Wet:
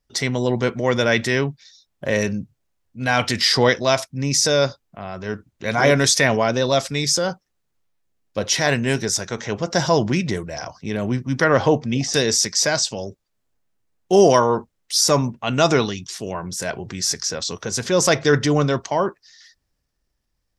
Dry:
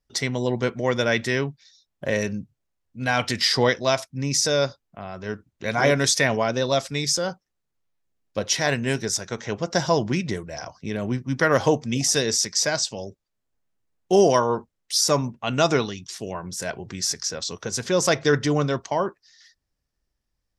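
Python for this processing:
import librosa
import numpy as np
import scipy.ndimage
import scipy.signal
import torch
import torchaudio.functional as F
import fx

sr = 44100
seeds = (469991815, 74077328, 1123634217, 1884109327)

y = fx.transient(x, sr, attack_db=-2, sustain_db=2)
y = fx.air_absorb(y, sr, metres=140.0, at=(11.44, 12.14))
y = y * 10.0 ** (4.0 / 20.0)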